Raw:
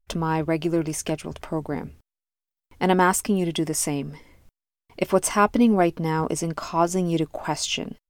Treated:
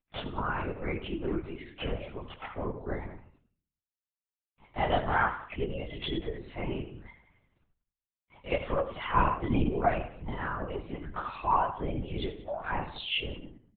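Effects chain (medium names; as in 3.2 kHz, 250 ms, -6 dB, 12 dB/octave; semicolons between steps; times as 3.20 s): high-pass 1.4 kHz 6 dB/octave; reverb removal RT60 1.3 s; tilt EQ -3 dB/octave; comb 7 ms, depth 61%; in parallel at +2.5 dB: compression 6:1, threshold -36 dBFS, peak gain reduction 18.5 dB; on the sum: plain phase-vocoder stretch 1.7×; delay 182 ms -18.5 dB; on a send at -10.5 dB: reverberation RT60 0.40 s, pre-delay 67 ms; on the sum: LPC vocoder at 8 kHz whisper; trim -2 dB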